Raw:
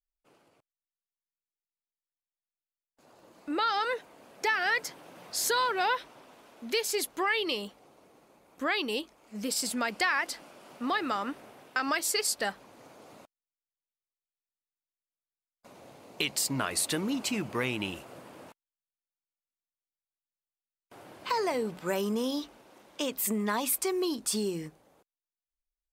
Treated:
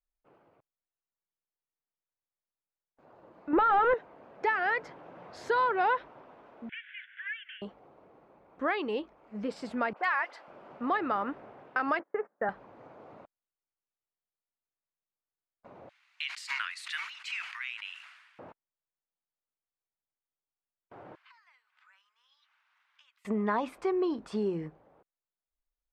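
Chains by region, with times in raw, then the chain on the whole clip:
3.53–3.94 sample leveller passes 3 + air absorption 400 m
6.69–7.62 delta modulation 64 kbps, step -43.5 dBFS + Chebyshev band-pass 1500–3400 Hz, order 5 + three-band squash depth 70%
9.93–10.48 HPF 640 Hz + dispersion highs, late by 46 ms, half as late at 2400 Hz
11.99–12.49 elliptic band-pass 180–1700 Hz + gate -47 dBFS, range -24 dB
15.89–18.39 inverse Chebyshev high-pass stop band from 530 Hz, stop band 60 dB + high shelf 3600 Hz +9 dB + sustainer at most 49 dB/s
21.15–23.25 compressor 3:1, threshold -48 dBFS + Bessel high-pass 2200 Hz, order 6
whole clip: LPF 1500 Hz 12 dB/oct; bell 250 Hz -3.5 dB 0.79 oct; gain +2.5 dB

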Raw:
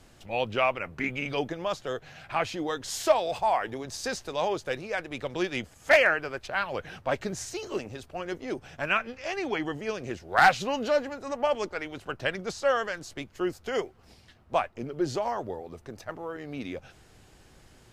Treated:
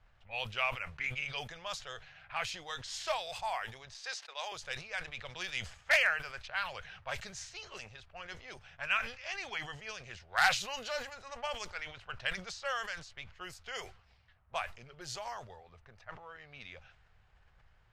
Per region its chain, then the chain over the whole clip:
3.94–4.52 Bessel high-pass 510 Hz, order 4 + gate -43 dBFS, range -21 dB
whole clip: low-pass opened by the level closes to 1400 Hz, open at -24.5 dBFS; passive tone stack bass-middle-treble 10-0-10; sustainer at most 110 dB/s

